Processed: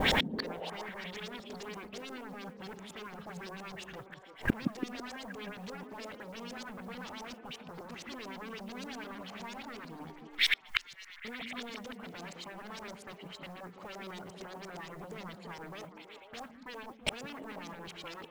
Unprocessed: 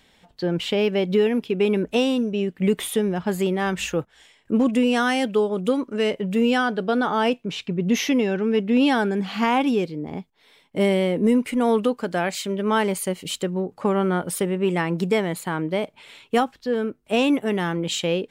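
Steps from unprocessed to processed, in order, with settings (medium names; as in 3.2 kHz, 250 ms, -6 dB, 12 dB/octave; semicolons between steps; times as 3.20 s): in parallel at -5.5 dB: sine folder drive 20 dB, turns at -10 dBFS; on the sum: gate with hold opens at -36 dBFS; LFO low-pass saw up 8.6 Hz 550–7400 Hz; 10.10–11.25 s: inverse Chebyshev band-stop 170–480 Hz, stop band 80 dB; modulation noise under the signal 23 dB; inverted gate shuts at -24 dBFS, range -41 dB; on a send: repeats whose band climbs or falls 165 ms, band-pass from 210 Hz, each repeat 0.7 oct, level -1 dB; on the sum: trim +10.5 dB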